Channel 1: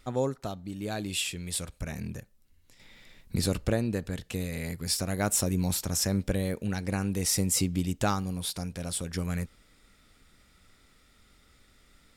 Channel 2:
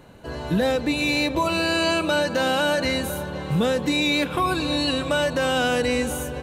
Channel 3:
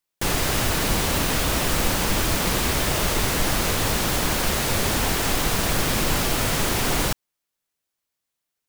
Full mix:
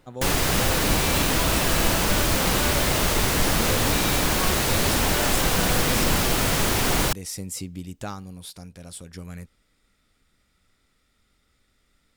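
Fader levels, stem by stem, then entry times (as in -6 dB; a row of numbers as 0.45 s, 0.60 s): -6.5 dB, -11.5 dB, +0.5 dB; 0.00 s, 0.00 s, 0.00 s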